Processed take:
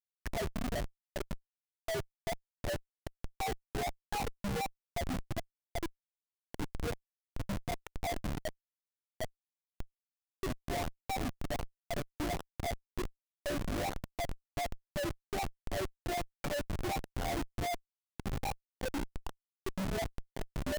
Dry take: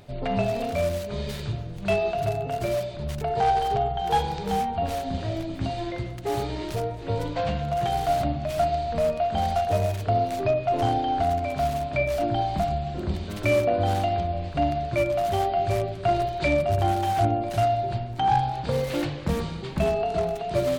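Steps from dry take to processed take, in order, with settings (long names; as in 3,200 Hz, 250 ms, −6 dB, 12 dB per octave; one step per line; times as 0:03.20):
0:08.54–0:10.45: stiff-string resonator 92 Hz, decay 0.29 s, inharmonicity 0.008
LFO wah 1.3 Hz 200–2,200 Hz, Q 6.1
comparator with hysteresis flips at −36 dBFS
level +4 dB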